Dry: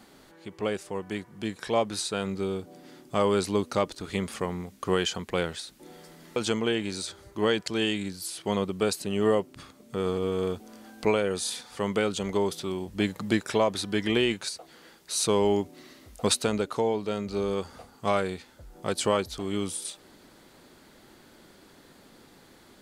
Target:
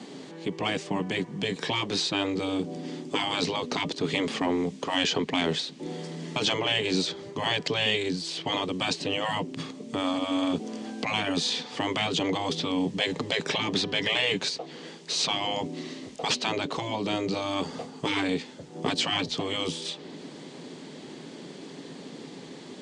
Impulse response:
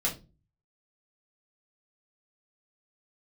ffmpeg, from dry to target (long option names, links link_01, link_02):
-filter_complex "[0:a]afftfilt=real='re*lt(hypot(re,im),0.112)':imag='im*lt(hypot(re,im),0.112)':win_size=1024:overlap=0.75,acrossover=split=450|5500[link_01][link_02][link_03];[link_03]acompressor=threshold=-56dB:ratio=6[link_04];[link_01][link_02][link_04]amix=inputs=3:normalize=0,asoftclip=type=tanh:threshold=-22.5dB,highpass=frequency=130:width=0.5412,highpass=frequency=130:width=1.3066,equalizer=frequency=160:width_type=q:width=4:gain=9,equalizer=frequency=270:width_type=q:width=4:gain=7,equalizer=frequency=430:width_type=q:width=4:gain=7,equalizer=frequency=1400:width_type=q:width=4:gain=-9,equalizer=frequency=3100:width_type=q:width=4:gain=3,lowpass=frequency=7900:width=0.5412,lowpass=frequency=7900:width=1.3066,volume=8.5dB" -ar 22050 -c:a libvorbis -b:a 48k